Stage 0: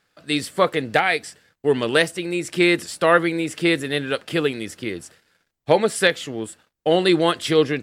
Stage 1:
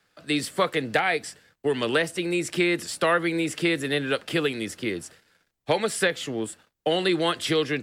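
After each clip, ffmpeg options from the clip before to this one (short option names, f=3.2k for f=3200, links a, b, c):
-filter_complex "[0:a]acrossover=split=250|830|3100[a][b][c][d];[d]alimiter=limit=-21dB:level=0:latency=1:release=38[e];[a][b][c][e]amix=inputs=4:normalize=0,acrossover=split=110|1300[f][g][h];[f]acompressor=threshold=-50dB:ratio=4[i];[g]acompressor=threshold=-22dB:ratio=4[j];[h]acompressor=threshold=-24dB:ratio=4[k];[i][j][k]amix=inputs=3:normalize=0"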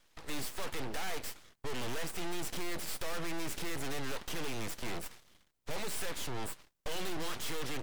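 -af "aeval=exprs='(tanh(56.2*val(0)+0.45)-tanh(0.45))/56.2':c=same,aeval=exprs='abs(val(0))':c=same,volume=3dB"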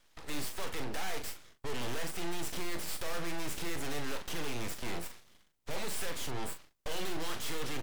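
-filter_complex "[0:a]asplit=2[a][b];[b]adelay=41,volume=-8dB[c];[a][c]amix=inputs=2:normalize=0"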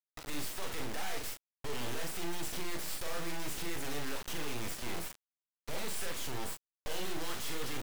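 -af "acrusher=bits=4:dc=4:mix=0:aa=0.000001,volume=-1.5dB"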